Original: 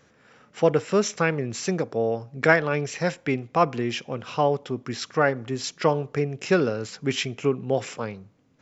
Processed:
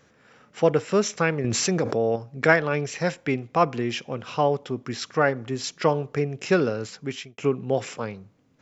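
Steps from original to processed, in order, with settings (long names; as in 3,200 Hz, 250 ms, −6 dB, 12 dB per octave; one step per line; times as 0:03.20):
0:01.44–0:02.16: envelope flattener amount 70%
0:06.83–0:07.38: fade out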